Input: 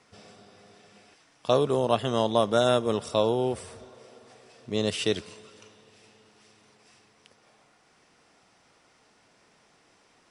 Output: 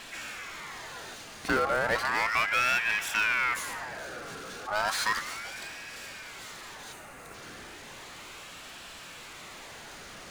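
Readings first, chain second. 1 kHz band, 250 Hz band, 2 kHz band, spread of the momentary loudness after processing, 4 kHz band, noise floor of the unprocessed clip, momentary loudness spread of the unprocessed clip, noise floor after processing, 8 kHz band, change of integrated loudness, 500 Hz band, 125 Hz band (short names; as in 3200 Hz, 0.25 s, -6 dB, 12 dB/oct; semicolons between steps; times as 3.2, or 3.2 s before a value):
+1.0 dB, -11.0 dB, +14.5 dB, 19 LU, -1.0 dB, -63 dBFS, 10 LU, -46 dBFS, +5.0 dB, -3.5 dB, -10.5 dB, -12.5 dB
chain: power-law curve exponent 0.5; spectral gain 6.93–7.34, 1900–6800 Hz -10 dB; ring modulator with a swept carrier 1500 Hz, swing 40%, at 0.34 Hz; gain -7 dB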